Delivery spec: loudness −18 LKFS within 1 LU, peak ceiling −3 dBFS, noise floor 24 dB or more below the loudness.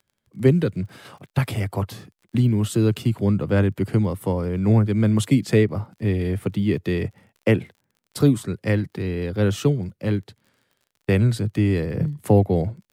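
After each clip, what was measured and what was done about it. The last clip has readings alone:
crackle rate 31 per second; integrated loudness −22.0 LKFS; sample peak −3.5 dBFS; target loudness −18.0 LKFS
→ click removal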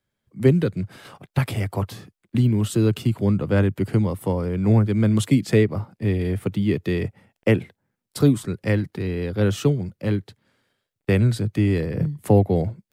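crackle rate 0.31 per second; integrated loudness −22.0 LKFS; sample peak −3.5 dBFS; target loudness −18.0 LKFS
→ level +4 dB
brickwall limiter −3 dBFS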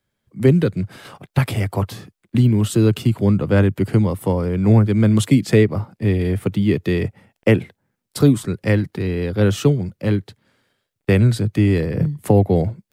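integrated loudness −18.5 LKFS; sample peak −3.0 dBFS; background noise floor −78 dBFS

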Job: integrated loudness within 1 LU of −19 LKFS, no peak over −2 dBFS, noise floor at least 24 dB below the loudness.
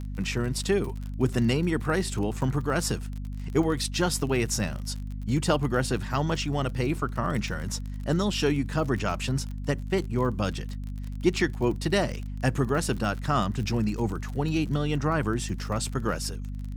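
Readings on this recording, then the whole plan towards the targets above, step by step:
crackle rate 40 per second; mains hum 50 Hz; hum harmonics up to 250 Hz; level of the hum −32 dBFS; integrated loudness −28.0 LKFS; sample peak −9.5 dBFS; target loudness −19.0 LKFS
→ click removal
hum removal 50 Hz, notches 5
level +9 dB
brickwall limiter −2 dBFS

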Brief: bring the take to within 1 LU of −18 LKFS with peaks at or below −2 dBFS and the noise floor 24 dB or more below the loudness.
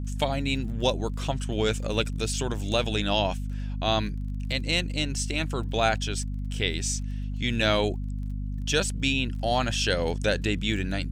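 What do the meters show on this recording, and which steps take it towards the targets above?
crackle rate 22 per second; mains hum 50 Hz; hum harmonics up to 250 Hz; level of the hum −28 dBFS; integrated loudness −27.5 LKFS; sample peak −9.5 dBFS; target loudness −18.0 LKFS
→ click removal
mains-hum notches 50/100/150/200/250 Hz
level +9.5 dB
brickwall limiter −2 dBFS

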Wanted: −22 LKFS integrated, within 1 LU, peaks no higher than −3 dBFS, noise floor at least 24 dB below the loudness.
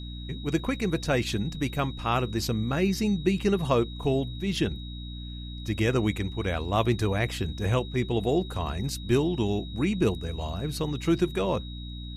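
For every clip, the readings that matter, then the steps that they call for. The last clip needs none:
mains hum 60 Hz; hum harmonics up to 300 Hz; level of the hum −36 dBFS; interfering tone 3,800 Hz; level of the tone −44 dBFS; integrated loudness −28.0 LKFS; sample peak −9.5 dBFS; target loudness −22.0 LKFS
→ mains-hum notches 60/120/180/240/300 Hz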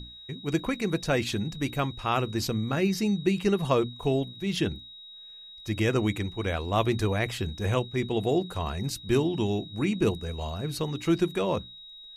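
mains hum none found; interfering tone 3,800 Hz; level of the tone −44 dBFS
→ notch filter 3,800 Hz, Q 30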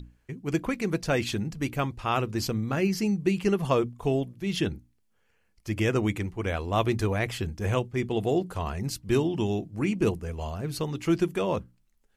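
interfering tone none found; integrated loudness −28.5 LKFS; sample peak −10.5 dBFS; target loudness −22.0 LKFS
→ level +6.5 dB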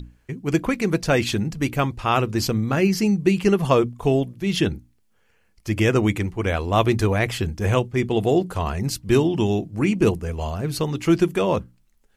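integrated loudness −22.0 LKFS; sample peak −4.0 dBFS; background noise floor −62 dBFS

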